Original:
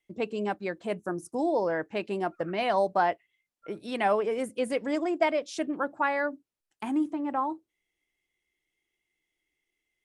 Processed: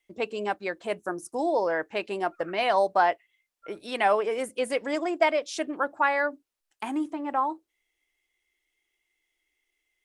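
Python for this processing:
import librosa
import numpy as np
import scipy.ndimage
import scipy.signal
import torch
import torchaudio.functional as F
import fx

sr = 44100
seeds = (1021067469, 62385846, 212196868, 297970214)

y = fx.peak_eq(x, sr, hz=150.0, db=-12.0, octaves=2.2)
y = F.gain(torch.from_numpy(y), 4.5).numpy()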